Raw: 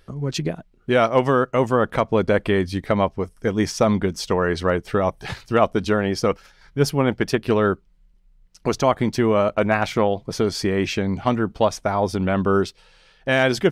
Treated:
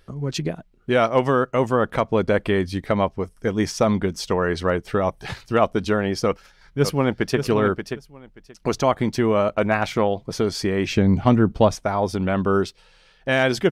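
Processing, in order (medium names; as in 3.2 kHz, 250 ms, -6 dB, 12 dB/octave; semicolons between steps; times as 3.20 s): 6.26–7.40 s: echo throw 580 ms, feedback 15%, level -7.5 dB; 10.90–11.75 s: bass shelf 360 Hz +9.5 dB; trim -1 dB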